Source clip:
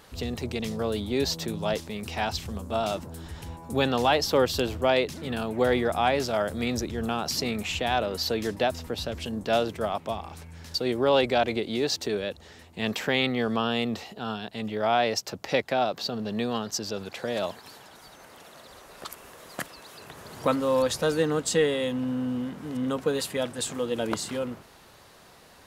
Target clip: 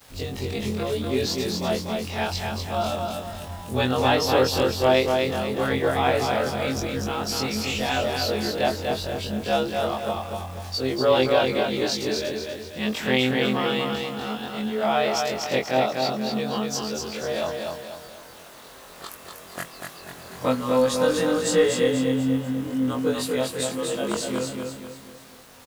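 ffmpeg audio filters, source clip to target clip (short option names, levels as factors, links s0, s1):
-af "afftfilt=real='re':imag='-im':win_size=2048:overlap=0.75,aecho=1:1:243|486|729|972|1215:0.631|0.271|0.117|0.0502|0.0216,acrusher=bits=8:mix=0:aa=0.000001,volume=1.88"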